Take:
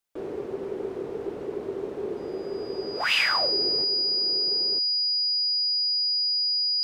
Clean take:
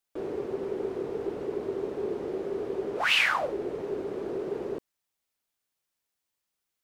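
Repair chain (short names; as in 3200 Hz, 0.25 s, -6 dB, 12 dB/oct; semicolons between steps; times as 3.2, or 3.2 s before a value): notch 4900 Hz, Q 30; gain 0 dB, from 3.84 s +6.5 dB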